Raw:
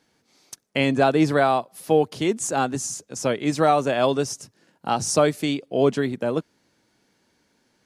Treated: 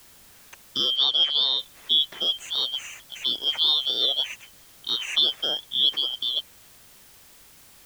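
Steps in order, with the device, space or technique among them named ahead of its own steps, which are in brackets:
split-band scrambled radio (band-splitting scrambler in four parts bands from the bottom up 3412; band-pass filter 350–3,300 Hz; white noise bed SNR 25 dB)
0:00.96–0:01.59: low-pass filter 6,500 Hz 12 dB per octave
low-shelf EQ 210 Hz +9.5 dB

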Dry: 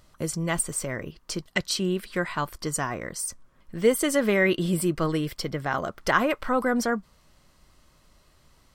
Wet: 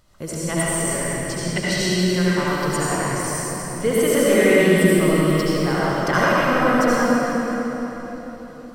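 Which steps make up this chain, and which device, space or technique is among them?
cathedral (convolution reverb RT60 4.2 s, pre-delay 63 ms, DRR −8.5 dB)
level −2 dB

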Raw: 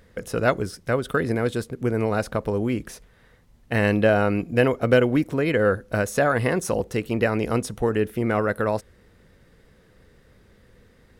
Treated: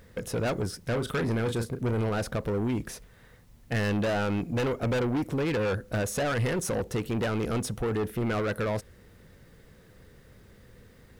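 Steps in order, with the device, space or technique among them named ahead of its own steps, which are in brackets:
0:00.79–0:02.09: double-tracking delay 35 ms −10 dB
open-reel tape (soft clipping −25 dBFS, distortion −6 dB; parametric band 120 Hz +3.5 dB 1.05 octaves; white noise bed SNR 41 dB)

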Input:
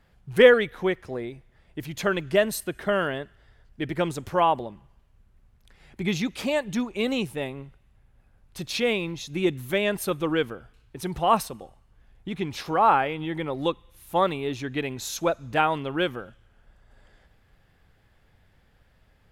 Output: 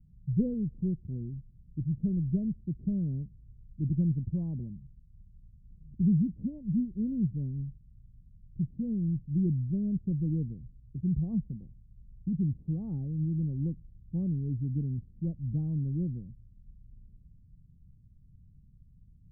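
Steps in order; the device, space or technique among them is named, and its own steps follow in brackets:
the neighbour's flat through the wall (low-pass filter 200 Hz 24 dB per octave; parametric band 150 Hz +3.5 dB)
level +4.5 dB

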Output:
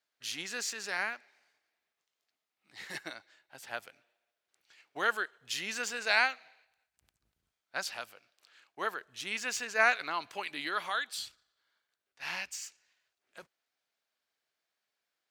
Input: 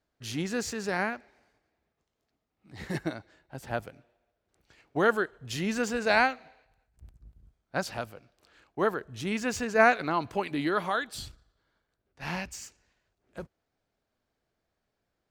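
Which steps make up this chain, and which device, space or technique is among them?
filter by subtraction (in parallel: low-pass filter 2,800 Hz 12 dB per octave + polarity inversion)

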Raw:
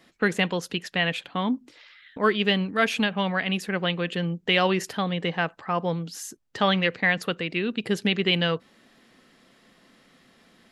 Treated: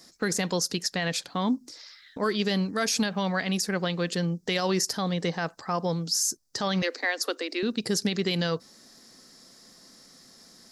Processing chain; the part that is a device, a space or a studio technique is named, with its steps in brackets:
over-bright horn tweeter (high shelf with overshoot 3,900 Hz +10.5 dB, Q 3; brickwall limiter −16 dBFS, peak gain reduction 8.5 dB)
0:06.82–0:07.63: Butterworth high-pass 260 Hz 96 dB per octave

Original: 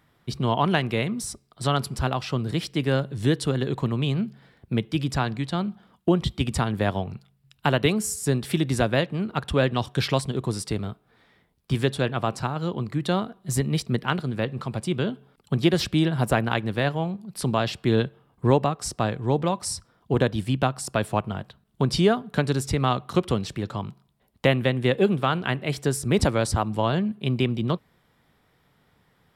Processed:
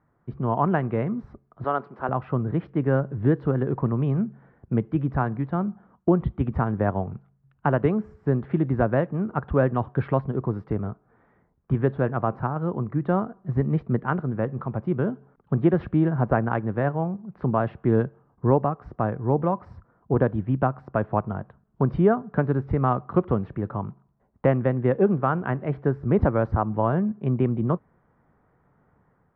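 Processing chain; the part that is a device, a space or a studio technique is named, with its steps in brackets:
0:01.64–0:02.09: high-pass filter 370 Hz 12 dB per octave
action camera in a waterproof case (low-pass filter 1,500 Hz 24 dB per octave; automatic gain control gain up to 5 dB; level −3.5 dB; AAC 96 kbit/s 24,000 Hz)

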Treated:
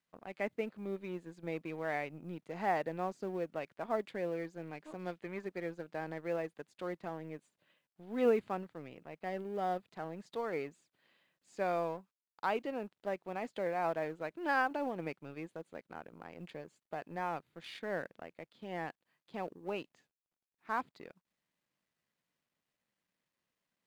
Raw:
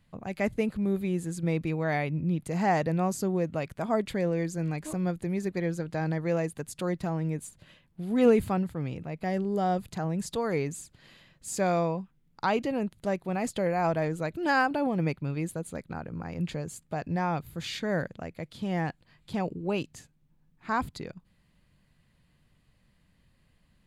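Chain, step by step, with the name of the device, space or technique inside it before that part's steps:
phone line with mismatched companding (band-pass filter 310–3,300 Hz; mu-law and A-law mismatch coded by A)
0:04.98–0:05.44: parametric band 5,400 Hz → 1,200 Hz +7.5 dB 1.6 octaves
level −5.5 dB

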